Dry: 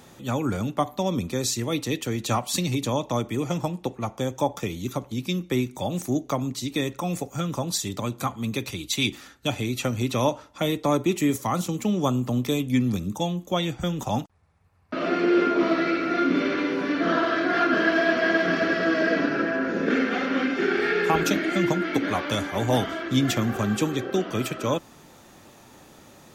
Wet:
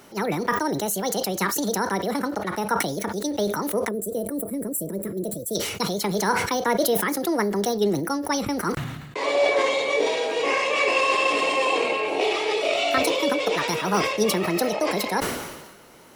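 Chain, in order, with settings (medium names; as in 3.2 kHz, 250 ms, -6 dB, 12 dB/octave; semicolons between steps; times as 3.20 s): time-frequency box 6.33–9.05 s, 410–4500 Hz -20 dB; wide varispeed 1.63×; decay stretcher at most 46 dB/s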